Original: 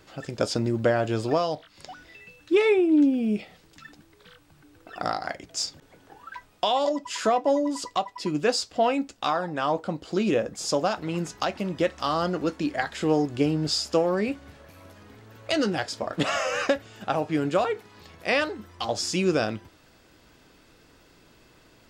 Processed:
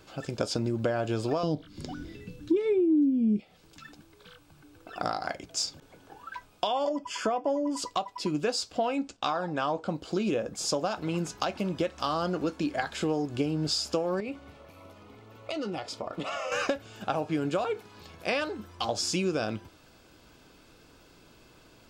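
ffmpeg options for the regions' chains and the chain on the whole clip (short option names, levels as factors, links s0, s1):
-filter_complex "[0:a]asettb=1/sr,asplit=3[s0][s1][s2];[s0]atrim=end=1.434[s3];[s1]atrim=start=1.43:end=3.4,asetpts=PTS-STARTPTS,afade=t=in:d=0.004:c=qsin,afade=t=out:st=1.966:d=0.004:c=qsin,lowshelf=f=450:t=q:w=1.5:g=14,bandreject=f=2600:w=13[s4];[s2]atrim=start=3.396[s5];[s3][s4]acrossfade=d=0.004:c1=hsin:c2=qsin[s6];[s6][s5]acrossfade=d=0.004:c1=qsin:c2=hsin,asettb=1/sr,asplit=3[s7][s8][s9];[s7]atrim=end=6.674[s10];[s8]atrim=start=6.67:end=7.77,asetpts=PTS-STARTPTS,afade=t=in:d=0.004:c=qsin,afade=t=out:st=1.096:d=0.004:c=qsin,asuperstop=centerf=3900:order=12:qfactor=6,highshelf=f=4800:g=-8[s11];[s9]atrim=start=7.766[s12];[s10][s11]acrossfade=d=0.004:c1=hsin:c2=qsin[s13];[s13][s12]acrossfade=d=0.004:c1=qsin:c2=hsin,asettb=1/sr,asplit=3[s14][s15][s16];[s14]atrim=end=8.964[s17];[s15]atrim=start=8.96:end=9.88,asetpts=PTS-STARTPTS,afade=t=in:d=0.004:c=qsin,afade=t=out:st=0.916:d=0.004:c=qsin,agate=range=0.501:threshold=0.00126:ratio=16:release=100:detection=peak,lowpass=f=8500:w=0.5412,lowpass=f=8500:w=1.3066[s18];[s16]atrim=start=9.876[s19];[s17][s18]acrossfade=d=0.004:c1=hsin:c2=qsin[s20];[s20][s19]acrossfade=d=0.004:c1=qsin:c2=hsin,asettb=1/sr,asplit=3[s21][s22][s23];[s21]atrim=end=14.204[s24];[s22]atrim=start=14.2:end=16.52,asetpts=PTS-STARTPTS,afade=t=in:d=0.004:c=qsin,afade=t=out:st=2.316:d=0.004:c=qsin,bass=f=250:g=-4,treble=f=4000:g=-7,acompressor=threshold=0.0316:ratio=5:attack=3.2:release=140:knee=1:detection=peak,asuperstop=centerf=1600:order=8:qfactor=7[s25];[s23]atrim=start=16.516[s26];[s24][s25]acrossfade=d=0.004:c1=hsin:c2=qsin[s27];[s27][s26]acrossfade=d=0.004:c1=qsin:c2=hsin,bandreject=f=1900:w=6.9,acompressor=threshold=0.0562:ratio=5"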